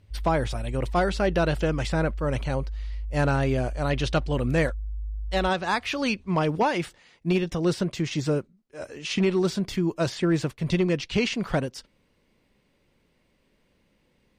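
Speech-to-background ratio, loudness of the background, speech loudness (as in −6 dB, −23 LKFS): 9.5 dB, −36.0 LKFS, −26.5 LKFS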